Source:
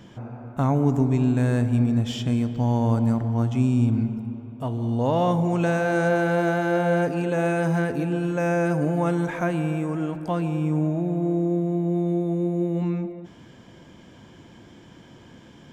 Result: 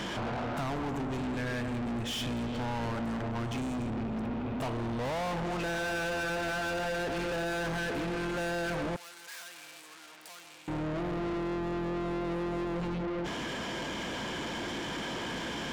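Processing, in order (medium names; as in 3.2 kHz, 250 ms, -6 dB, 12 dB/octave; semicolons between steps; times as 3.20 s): octave divider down 2 oct, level -1 dB; dynamic bell 1.6 kHz, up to +4 dB, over -42 dBFS, Q 2.4; compression 10:1, threshold -30 dBFS, peak gain reduction 17 dB; overdrive pedal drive 36 dB, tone 5.3 kHz, clips at -20.5 dBFS; 8.96–10.68 s: differentiator; trim -6.5 dB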